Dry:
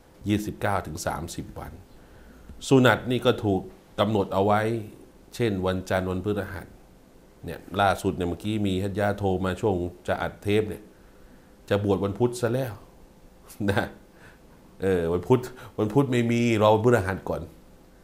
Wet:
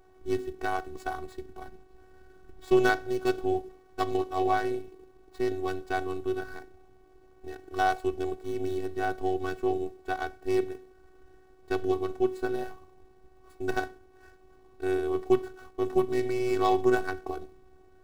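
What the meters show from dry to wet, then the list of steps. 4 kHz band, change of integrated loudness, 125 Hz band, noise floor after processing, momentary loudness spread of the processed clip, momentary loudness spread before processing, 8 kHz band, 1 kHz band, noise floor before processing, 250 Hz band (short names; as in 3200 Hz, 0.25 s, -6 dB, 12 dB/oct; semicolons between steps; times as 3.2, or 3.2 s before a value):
-9.0 dB, -4.5 dB, -15.0 dB, -57 dBFS, 15 LU, 16 LU, n/a, -2.0 dB, -54 dBFS, -6.0 dB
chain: median filter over 15 samples; robotiser 375 Hz; gain -1.5 dB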